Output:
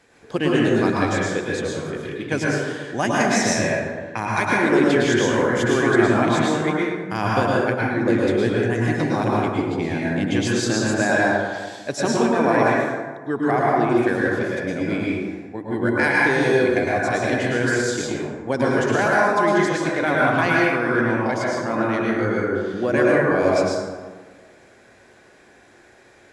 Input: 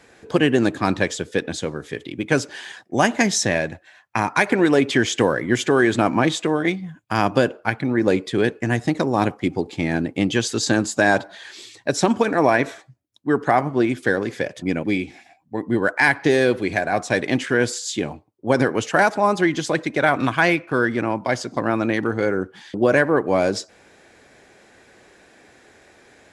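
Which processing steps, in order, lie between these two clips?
dense smooth reverb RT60 1.5 s, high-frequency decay 0.45×, pre-delay 95 ms, DRR −5 dB
level −6 dB

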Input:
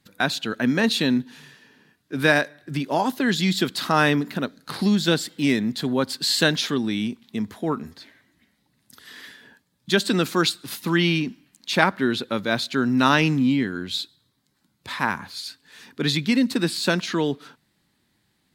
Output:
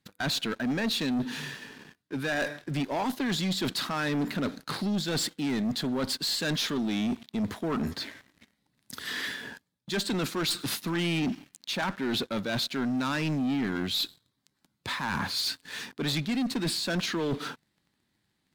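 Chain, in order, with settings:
one-sided soft clipper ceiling −9 dBFS
reversed playback
downward compressor 12 to 1, threshold −32 dBFS, peak gain reduction 18 dB
reversed playback
high-shelf EQ 11,000 Hz −6 dB
leveller curve on the samples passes 3
level −1.5 dB

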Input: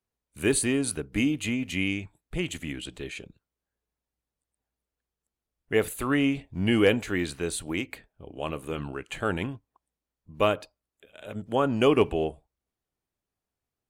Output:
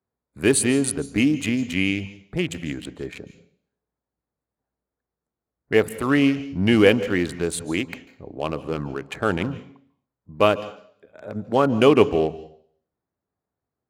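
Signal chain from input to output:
adaptive Wiener filter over 15 samples
high-pass filter 84 Hz
on a send: high-shelf EQ 2,500 Hz +9.5 dB + convolution reverb RT60 0.55 s, pre-delay 139 ms, DRR 16.5 dB
on the sum: level +6 dB

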